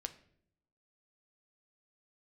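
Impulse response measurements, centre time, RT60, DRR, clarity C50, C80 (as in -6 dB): 5 ms, 0.65 s, 8.0 dB, 15.0 dB, 18.5 dB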